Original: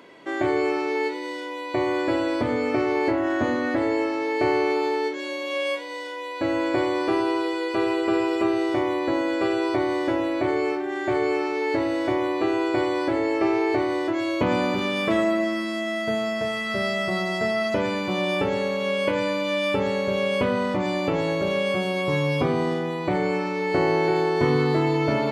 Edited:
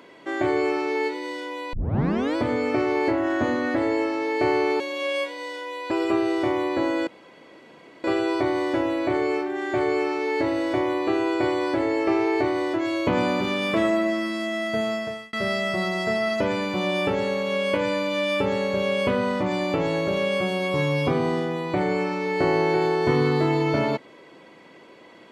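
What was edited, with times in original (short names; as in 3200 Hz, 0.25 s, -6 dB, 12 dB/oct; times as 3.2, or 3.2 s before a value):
1.73 tape start 0.63 s
4.8–5.31 cut
6.42–8.22 cut
9.38 insert room tone 0.97 s
16.26–16.67 fade out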